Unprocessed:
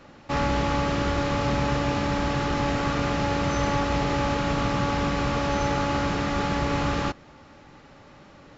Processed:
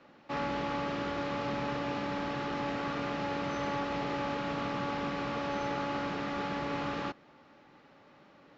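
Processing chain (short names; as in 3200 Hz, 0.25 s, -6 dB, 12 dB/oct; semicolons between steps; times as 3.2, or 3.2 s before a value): three-band isolator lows -16 dB, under 150 Hz, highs -18 dB, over 5300 Hz; gain -8 dB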